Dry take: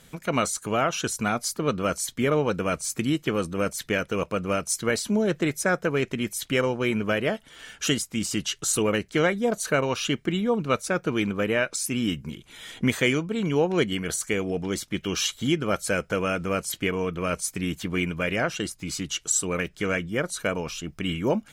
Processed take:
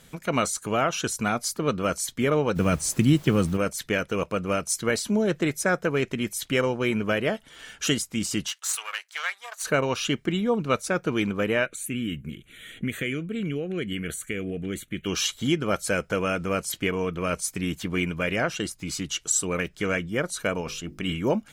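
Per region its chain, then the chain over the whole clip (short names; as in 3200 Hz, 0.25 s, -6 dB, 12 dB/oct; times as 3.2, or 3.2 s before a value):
2.55–3.56 HPF 53 Hz + tone controls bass +11 dB, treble +3 dB + added noise pink -48 dBFS
8.47–9.63 half-wave gain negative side -7 dB + HPF 1000 Hz 24 dB/oct
11.66–15.06 compressor 3:1, threshold -24 dBFS + fixed phaser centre 2200 Hz, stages 4
20.61–21.13 notches 50/100/150/200/250/300/350/400/450/500 Hz + short-mantissa float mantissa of 8-bit
whole clip: dry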